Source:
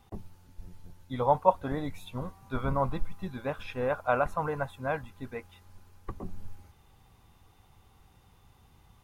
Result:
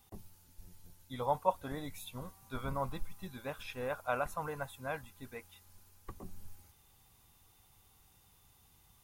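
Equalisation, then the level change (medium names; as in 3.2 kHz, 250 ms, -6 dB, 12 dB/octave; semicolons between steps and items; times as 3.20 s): pre-emphasis filter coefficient 0.8; +5.0 dB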